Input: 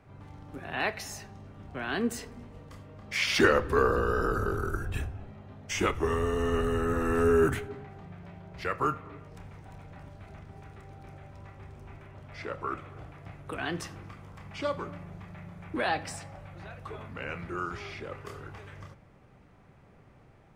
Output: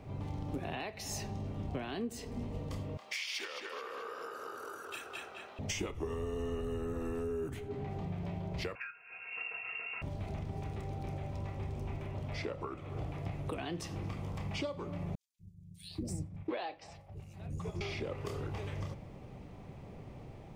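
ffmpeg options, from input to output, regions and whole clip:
ffmpeg -i in.wav -filter_complex "[0:a]asettb=1/sr,asplit=3[link_01][link_02][link_03];[link_01]atrim=end=2.974[link_04];[link_02]atrim=start=2.97:end=5.59,asetpts=PTS-STARTPTS,afade=type=in:duration=0.004:curve=qsin,afade=type=out:start_time=2.616:duration=0.004:curve=qsin,highpass=1000,asplit=2[link_05][link_06];[link_06]adelay=213,lowpass=frequency=4200:poles=1,volume=-3dB,asplit=2[link_07][link_08];[link_08]adelay=213,lowpass=frequency=4200:poles=1,volume=0.51,asplit=2[link_09][link_10];[link_10]adelay=213,lowpass=frequency=4200:poles=1,volume=0.51,asplit=2[link_11][link_12];[link_12]adelay=213,lowpass=frequency=4200:poles=1,volume=0.51,asplit=2[link_13][link_14];[link_14]adelay=213,lowpass=frequency=4200:poles=1,volume=0.51,asplit=2[link_15][link_16];[link_16]adelay=213,lowpass=frequency=4200:poles=1,volume=0.51,asplit=2[link_17][link_18];[link_18]adelay=213,lowpass=frequency=4200:poles=1,volume=0.51[link_19];[link_05][link_07][link_09][link_11][link_13][link_15][link_17][link_19]amix=inputs=8:normalize=0,atrim=end_sample=115542[link_20];[link_03]atrim=start=5.586[link_21];[link_04][link_20]acrossfade=duration=0.004:curve1=hsin:curve2=qsin[link_22];[link_22][link_21]acrossfade=duration=0.004:curve1=qsin:curve2=hsin,asettb=1/sr,asplit=3[link_23][link_24][link_25];[link_23]atrim=end=8.754[link_26];[link_24]atrim=start=8.75:end=10.02,asetpts=PTS-STARTPTS,afade=type=in:duration=0.004:curve=qsin,afade=type=out:start_time=1.266:duration=0.004:curve=qsin,equalizer=frequency=1400:width=4.3:gain=11,aecho=1:1:3.4:0.91,atrim=end_sample=56007,lowpass=frequency=2400:width_type=q:width=0.5098,lowpass=frequency=2400:width_type=q:width=0.6013,lowpass=frequency=2400:width_type=q:width=0.9,lowpass=frequency=2400:width_type=q:width=2.563,afreqshift=-2800[link_27];[link_25]atrim=start=10.016[link_28];[link_26][link_27]acrossfade=duration=0.004:curve1=hsin:curve2=qsin[link_29];[link_29][link_28]acrossfade=duration=0.004:curve1=qsin:curve2=hsin,asettb=1/sr,asplit=3[link_30][link_31][link_32];[link_30]atrim=end=15.154[link_33];[link_31]atrim=start=15.15:end=17.81,asetpts=PTS-STARTPTS,afade=type=in:duration=0.004:curve=qsin,afade=type=out:start_time=2.656:duration=0.004:curve=qsin,agate=range=-33dB:threshold=-34dB:ratio=3:release=100:detection=peak,bandreject=frequency=260:width=5.4,acrossover=split=260|5600[link_34][link_35][link_36];[link_34]adelay=240[link_37];[link_35]adelay=740[link_38];[link_37][link_38][link_36]amix=inputs=3:normalize=0,atrim=end_sample=117306[link_39];[link_32]atrim=start=17.806[link_40];[link_33][link_39]acrossfade=duration=0.004:curve1=hsin:curve2=qsin[link_41];[link_41][link_40]acrossfade=duration=0.004:curve1=qsin:curve2=hsin,equalizer=frequency=11000:width_type=o:width=1.3:gain=-4.5,acompressor=threshold=-42dB:ratio=16,equalizer=frequency=1500:width_type=o:width=0.88:gain=-12,volume=9dB" out.wav

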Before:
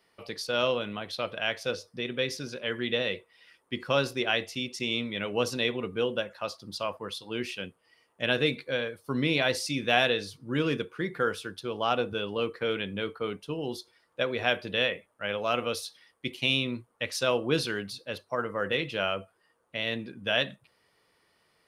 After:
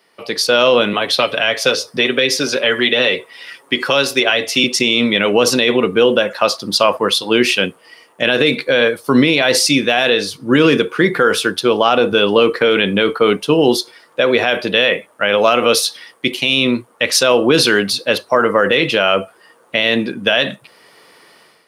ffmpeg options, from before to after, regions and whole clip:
ffmpeg -i in.wav -filter_complex "[0:a]asettb=1/sr,asplit=3[link_01][link_02][link_03];[link_01]atrim=end=0.934[link_04];[link_02]atrim=start=0.93:end=4.64,asetpts=PTS-STARTPTS,afade=type=in:duration=0.004:curve=qsin,afade=type=out:start_time=3.706:duration=0.004:curve=qsin,aecho=1:1:7.2:0.46,atrim=end_sample=163611,acrossover=split=320|2000[link_05][link_06][link_07];[link_05]acompressor=threshold=-47dB:ratio=4[link_08];[link_06]acompressor=threshold=-36dB:ratio=4[link_09];[link_07]acompressor=threshold=-35dB:ratio=4[link_10];[link_08][link_09][link_10]amix=inputs=3:normalize=0[link_11];[link_03]atrim=start=4.636[link_12];[link_04][link_11]acrossfade=duration=0.004:curve1=hsin:curve2=qsin[link_13];[link_13][link_12]acrossfade=duration=0.004:curve1=qsin:curve2=hsin,dynaudnorm=framelen=130:gausssize=5:maxgain=11.5dB,highpass=200,alimiter=level_in=12dB:limit=-1dB:release=50:level=0:latency=1,volume=-1dB" out.wav

